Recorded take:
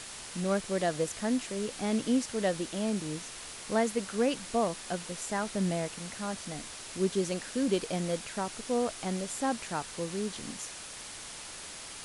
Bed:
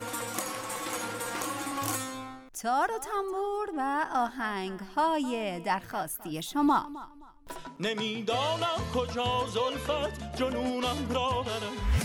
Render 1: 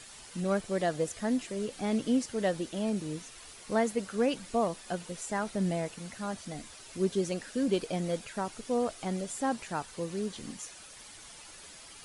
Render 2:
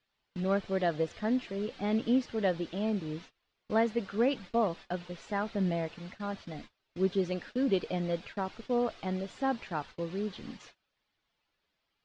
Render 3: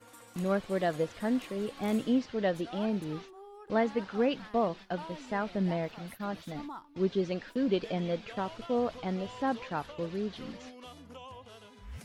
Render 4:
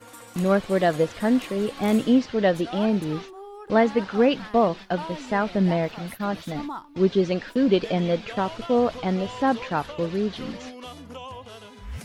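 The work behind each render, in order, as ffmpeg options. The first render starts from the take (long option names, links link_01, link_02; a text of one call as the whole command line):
ffmpeg -i in.wav -af "afftdn=noise_reduction=9:noise_floor=-44" out.wav
ffmpeg -i in.wav -af "agate=range=-28dB:threshold=-44dB:ratio=16:detection=peak,lowpass=frequency=4300:width=0.5412,lowpass=frequency=4300:width=1.3066" out.wav
ffmpeg -i in.wav -i bed.wav -filter_complex "[1:a]volume=-18.5dB[link_01];[0:a][link_01]amix=inputs=2:normalize=0" out.wav
ffmpeg -i in.wav -af "volume=9dB" out.wav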